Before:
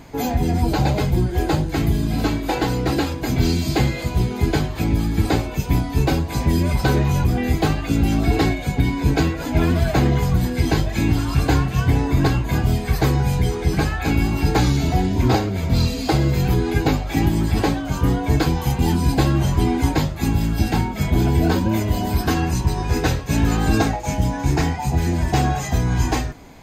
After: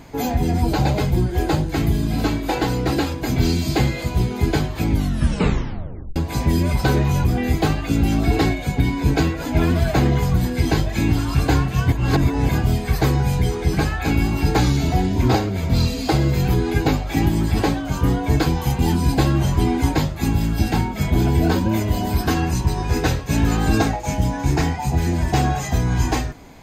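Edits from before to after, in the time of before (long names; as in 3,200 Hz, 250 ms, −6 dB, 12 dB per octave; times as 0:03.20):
0:04.90: tape stop 1.26 s
0:11.92–0:12.49: reverse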